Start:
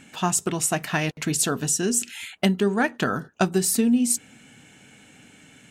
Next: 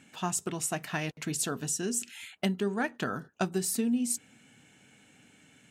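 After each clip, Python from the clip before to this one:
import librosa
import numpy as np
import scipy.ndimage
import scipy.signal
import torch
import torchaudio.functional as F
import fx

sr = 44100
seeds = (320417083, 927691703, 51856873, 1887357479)

y = scipy.signal.sosfilt(scipy.signal.butter(2, 57.0, 'highpass', fs=sr, output='sos'), x)
y = y * 10.0 ** (-8.5 / 20.0)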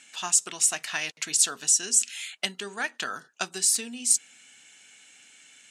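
y = fx.weighting(x, sr, curve='ITU-R 468')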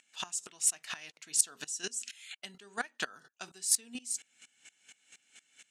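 y = fx.volume_shaper(x, sr, bpm=128, per_beat=2, depth_db=-21, release_ms=196.0, shape='slow start')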